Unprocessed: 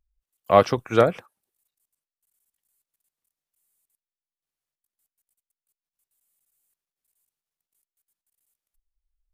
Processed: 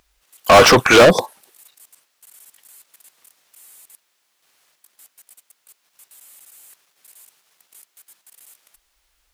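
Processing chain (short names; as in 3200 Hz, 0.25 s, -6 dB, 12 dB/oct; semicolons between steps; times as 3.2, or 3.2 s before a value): spectral repair 1.07–1.29, 1100–3400 Hz after; overdrive pedal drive 39 dB, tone 5800 Hz, clips at -1 dBFS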